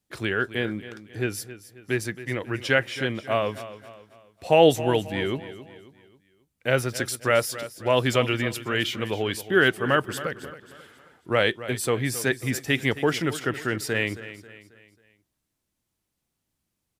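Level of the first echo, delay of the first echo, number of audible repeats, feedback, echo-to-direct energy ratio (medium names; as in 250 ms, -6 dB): -14.5 dB, 270 ms, 3, 42%, -13.5 dB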